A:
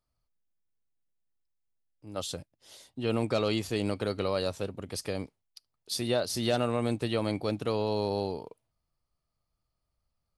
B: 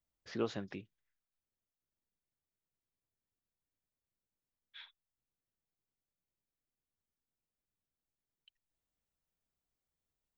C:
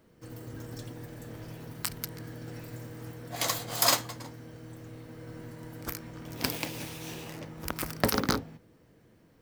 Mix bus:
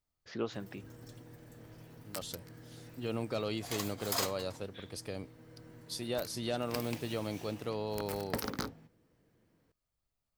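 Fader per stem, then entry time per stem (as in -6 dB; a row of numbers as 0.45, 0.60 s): -7.5, -0.5, -10.0 dB; 0.00, 0.00, 0.30 s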